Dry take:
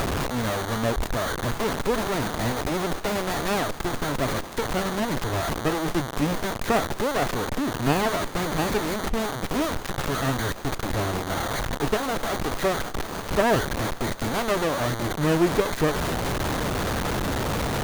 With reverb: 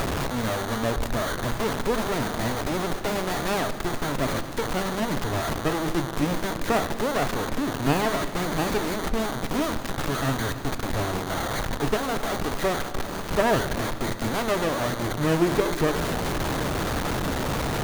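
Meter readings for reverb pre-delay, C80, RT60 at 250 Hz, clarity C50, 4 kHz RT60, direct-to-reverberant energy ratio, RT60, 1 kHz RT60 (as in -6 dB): 3 ms, 13.5 dB, 3.7 s, 12.5 dB, 1.3 s, 10.5 dB, 2.1 s, 1.8 s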